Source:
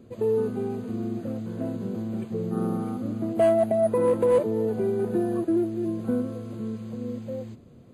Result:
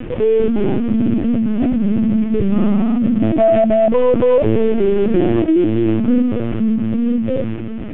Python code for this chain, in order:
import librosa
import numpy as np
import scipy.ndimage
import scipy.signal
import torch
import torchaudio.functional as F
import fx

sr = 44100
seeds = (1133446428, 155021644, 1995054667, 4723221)

y = fx.cvsd(x, sr, bps=16000)
y = fx.highpass(y, sr, hz=100.0, slope=24, at=(4.68, 6.69))
y = fx.dynamic_eq(y, sr, hz=200.0, q=1.6, threshold_db=-41.0, ratio=4.0, max_db=7)
y = fx.echo_feedback(y, sr, ms=1008, feedback_pct=38, wet_db=-23.0)
y = fx.lpc_vocoder(y, sr, seeds[0], excitation='pitch_kept', order=16)
y = fx.env_flatten(y, sr, amount_pct=50)
y = F.gain(torch.from_numpy(y), 6.5).numpy()